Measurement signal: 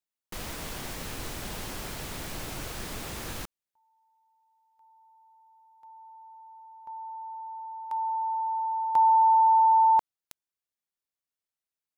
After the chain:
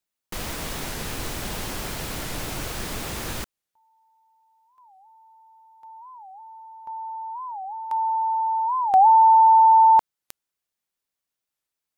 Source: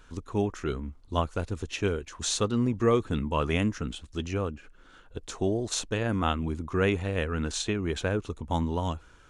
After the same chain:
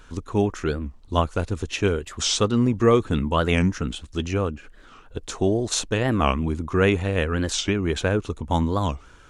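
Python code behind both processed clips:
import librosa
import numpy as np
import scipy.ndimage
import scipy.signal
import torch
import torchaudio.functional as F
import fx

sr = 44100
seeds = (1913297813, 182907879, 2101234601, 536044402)

y = fx.record_warp(x, sr, rpm=45.0, depth_cents=250.0)
y = y * 10.0 ** (6.0 / 20.0)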